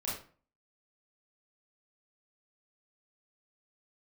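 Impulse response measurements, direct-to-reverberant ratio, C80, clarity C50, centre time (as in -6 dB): -7.5 dB, 9.0 dB, 3.0 dB, 45 ms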